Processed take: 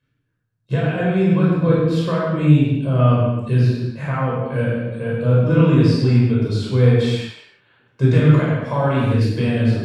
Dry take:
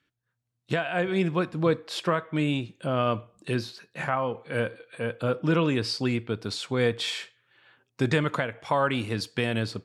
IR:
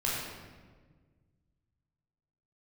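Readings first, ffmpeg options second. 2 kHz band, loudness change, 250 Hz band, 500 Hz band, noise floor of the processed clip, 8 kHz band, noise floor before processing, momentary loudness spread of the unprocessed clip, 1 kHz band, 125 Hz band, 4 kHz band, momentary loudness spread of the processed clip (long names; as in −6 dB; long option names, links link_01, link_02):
+2.0 dB, +10.5 dB, +11.0 dB, +7.0 dB, −71 dBFS, can't be measured, −80 dBFS, 7 LU, +3.0 dB, +16.5 dB, −0.5 dB, 8 LU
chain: -filter_complex "[0:a]lowshelf=frequency=490:gain=11.5[link_01];[1:a]atrim=start_sample=2205,afade=type=out:start_time=0.43:duration=0.01,atrim=end_sample=19404[link_02];[link_01][link_02]afir=irnorm=-1:irlink=0,volume=-7dB"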